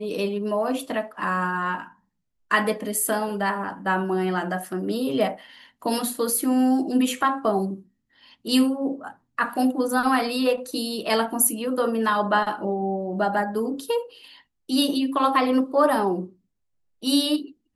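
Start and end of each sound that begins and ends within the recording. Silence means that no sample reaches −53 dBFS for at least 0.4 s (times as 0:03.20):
0:02.51–0:16.34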